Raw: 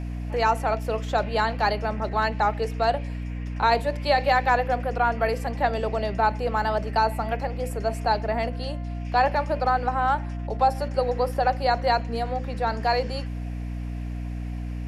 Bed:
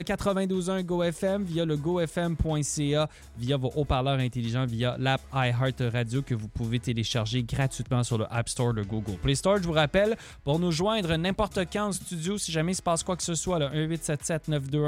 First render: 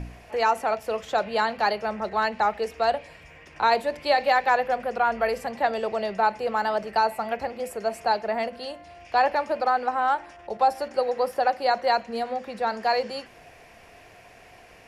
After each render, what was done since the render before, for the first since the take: de-hum 60 Hz, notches 5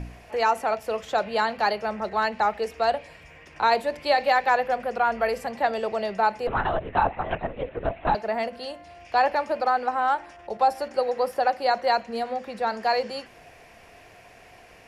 6.47–8.15 LPC vocoder at 8 kHz whisper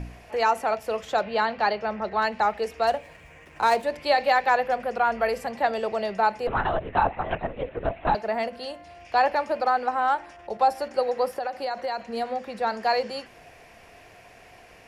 1.21–2.22 LPF 4600 Hz; 2.87–3.83 median filter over 9 samples; 11.32–12.17 compressor 10:1, threshold -25 dBFS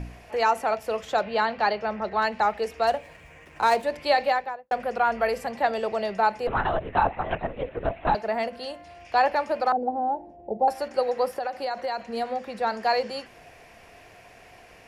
4.16–4.71 studio fade out; 9.72–10.68 EQ curve 130 Hz 0 dB, 230 Hz +8 dB, 830 Hz -2 dB, 1200 Hz -29 dB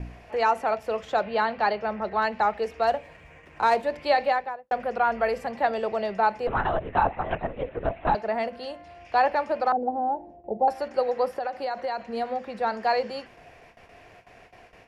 gate with hold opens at -40 dBFS; LPF 3300 Hz 6 dB/oct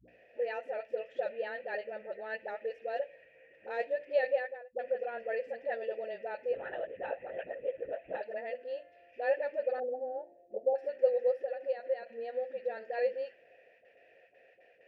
vowel filter e; dispersion highs, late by 80 ms, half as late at 380 Hz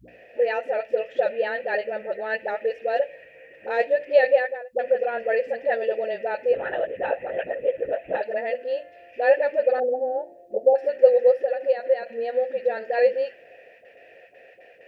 gain +12 dB

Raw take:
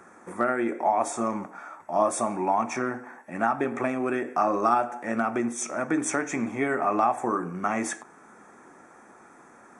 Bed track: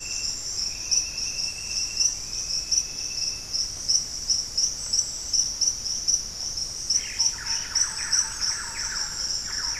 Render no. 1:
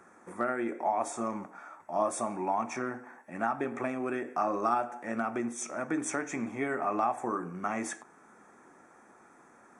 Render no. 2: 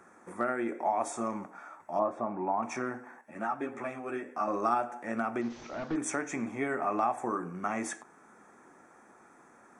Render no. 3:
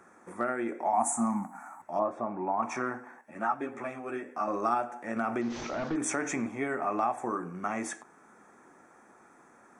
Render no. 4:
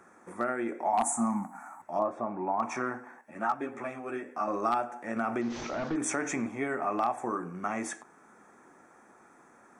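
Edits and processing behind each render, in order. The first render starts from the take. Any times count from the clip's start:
gain -6 dB
1.99–2.63 LPF 1400 Hz; 3.21–4.48 ensemble effect; 5.41–5.96 delta modulation 32 kbps, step -50 dBFS
0.93–1.82 EQ curve 100 Hz 0 dB, 250 Hz +10 dB, 450 Hz -23 dB, 780 Hz +9 dB, 1200 Hz 0 dB, 2200 Hz -2 dB, 3300 Hz -20 dB, 5000 Hz -11 dB, 7300 Hz +11 dB, 13000 Hz +15 dB; 2.59–3.52 dynamic EQ 1100 Hz, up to +6 dB, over -47 dBFS, Q 1.3; 5.16–6.47 fast leveller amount 50%
wavefolder -18 dBFS

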